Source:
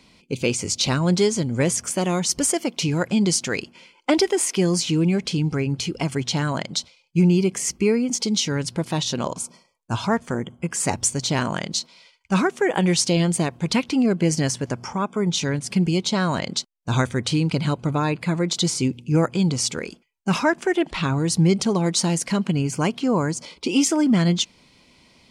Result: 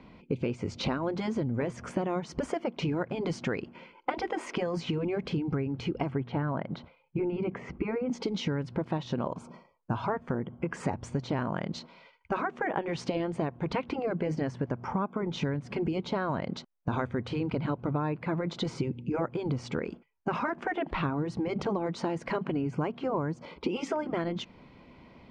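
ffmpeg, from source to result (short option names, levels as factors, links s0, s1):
-filter_complex "[0:a]asplit=3[s0][s1][s2];[s0]afade=t=out:st=6.11:d=0.02[s3];[s1]lowpass=2300,afade=t=in:st=6.11:d=0.02,afade=t=out:st=8.08:d=0.02[s4];[s2]afade=t=in:st=8.08:d=0.02[s5];[s3][s4][s5]amix=inputs=3:normalize=0,afftfilt=real='re*lt(hypot(re,im),0.794)':imag='im*lt(hypot(re,im),0.794)':win_size=1024:overlap=0.75,lowpass=1500,acompressor=threshold=0.0251:ratio=6,volume=1.68"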